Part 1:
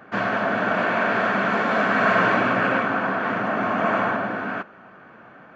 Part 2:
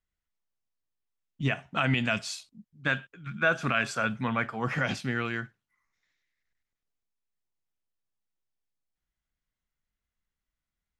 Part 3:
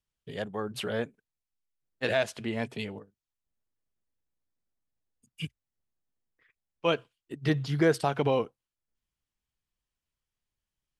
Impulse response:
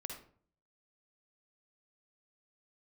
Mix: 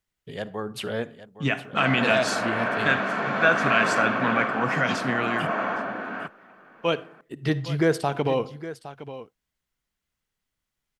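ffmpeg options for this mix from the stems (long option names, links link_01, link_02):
-filter_complex "[0:a]highpass=190,adelay=1650,volume=-5dB[link_01];[1:a]highpass=150,volume=2.5dB,asplit=3[link_02][link_03][link_04];[link_03]volume=-7.5dB[link_05];[link_04]volume=-21dB[link_06];[2:a]volume=0.5dB,asplit=3[link_07][link_08][link_09];[link_08]volume=-9.5dB[link_10];[link_09]volume=-12.5dB[link_11];[3:a]atrim=start_sample=2205[link_12];[link_05][link_10]amix=inputs=2:normalize=0[link_13];[link_13][link_12]afir=irnorm=-1:irlink=0[link_14];[link_06][link_11]amix=inputs=2:normalize=0,aecho=0:1:813:1[link_15];[link_01][link_02][link_07][link_14][link_15]amix=inputs=5:normalize=0"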